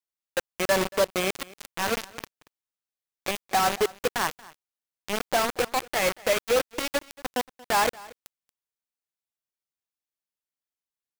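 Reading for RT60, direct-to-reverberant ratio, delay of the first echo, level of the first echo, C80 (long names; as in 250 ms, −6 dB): no reverb audible, no reverb audible, 231 ms, −21.5 dB, no reverb audible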